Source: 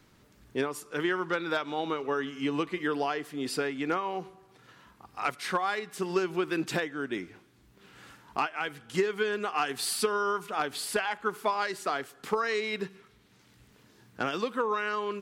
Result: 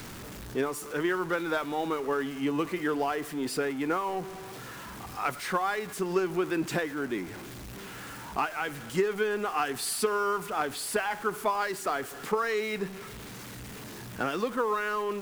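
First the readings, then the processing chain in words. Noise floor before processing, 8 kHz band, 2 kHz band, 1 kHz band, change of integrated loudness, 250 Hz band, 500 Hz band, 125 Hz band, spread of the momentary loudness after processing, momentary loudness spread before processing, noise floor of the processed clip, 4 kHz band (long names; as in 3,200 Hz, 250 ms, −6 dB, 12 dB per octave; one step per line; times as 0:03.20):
−61 dBFS, +2.0 dB, 0.0 dB, +1.0 dB, +0.5 dB, +1.5 dB, +1.5 dB, +2.5 dB, 13 LU, 6 LU, −43 dBFS, −2.0 dB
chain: converter with a step at zero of −37 dBFS
dynamic equaliser 3,800 Hz, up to −5 dB, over −48 dBFS, Q 0.84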